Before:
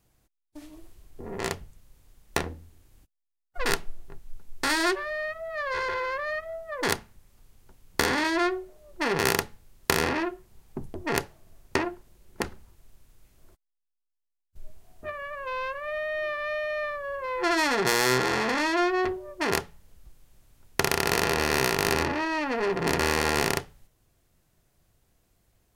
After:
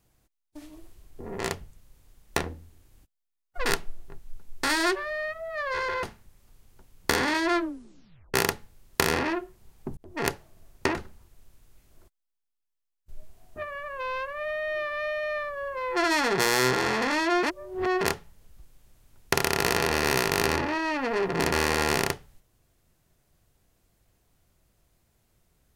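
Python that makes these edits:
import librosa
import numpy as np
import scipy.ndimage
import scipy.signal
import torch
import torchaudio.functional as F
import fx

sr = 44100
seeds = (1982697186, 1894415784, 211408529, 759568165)

y = fx.edit(x, sr, fx.cut(start_s=6.03, length_s=0.9),
    fx.tape_stop(start_s=8.44, length_s=0.8),
    fx.fade_in_span(start_s=10.87, length_s=0.31),
    fx.cut(start_s=11.85, length_s=0.57),
    fx.reverse_span(start_s=18.9, length_s=0.58), tone=tone)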